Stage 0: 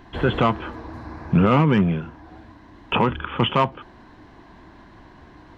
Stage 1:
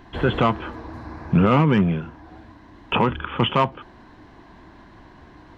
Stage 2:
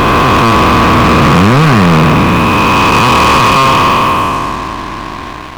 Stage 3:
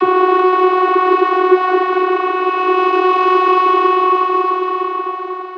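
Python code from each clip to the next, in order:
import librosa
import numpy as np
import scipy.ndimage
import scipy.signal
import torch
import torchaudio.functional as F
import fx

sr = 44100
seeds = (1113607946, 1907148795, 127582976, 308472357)

y1 = x
y2 = fx.spec_blur(y1, sr, span_ms=991.0)
y2 = fx.small_body(y2, sr, hz=(1100.0, 2500.0), ring_ms=20, db=13)
y2 = fx.leveller(y2, sr, passes=5)
y2 = y2 * 10.0 ** (8.0 / 20.0)
y3 = fx.air_absorb(y2, sr, metres=240.0)
y3 = y3 + 10.0 ** (-7.5 / 20.0) * np.pad(y3, (int(876 * sr / 1000.0), 0))[:len(y3)]
y3 = fx.vocoder(y3, sr, bands=32, carrier='saw', carrier_hz=369.0)
y3 = y3 * 10.0 ** (-4.0 / 20.0)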